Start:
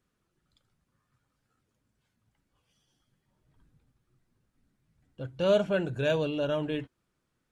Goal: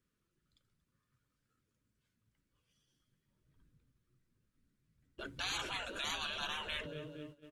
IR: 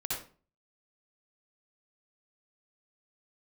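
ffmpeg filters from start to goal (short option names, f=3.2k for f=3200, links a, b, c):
-af "aecho=1:1:232|464|696|928:0.1|0.053|0.0281|0.0149,agate=range=-13dB:threshold=-58dB:ratio=16:detection=peak,equalizer=f=780:t=o:w=0.6:g=-12,afftfilt=real='re*lt(hypot(re,im),0.0251)':imag='im*lt(hypot(re,im),0.0251)':win_size=1024:overlap=0.75,volume=8dB"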